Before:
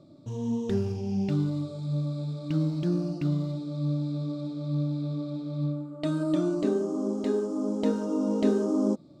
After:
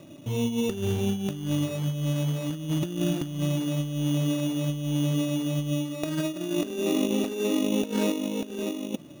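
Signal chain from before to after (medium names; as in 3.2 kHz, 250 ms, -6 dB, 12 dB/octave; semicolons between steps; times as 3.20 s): compressor with a negative ratio -30 dBFS, ratio -0.5; sample-and-hold 14×; bass shelf 180 Hz -3.5 dB; trim +5 dB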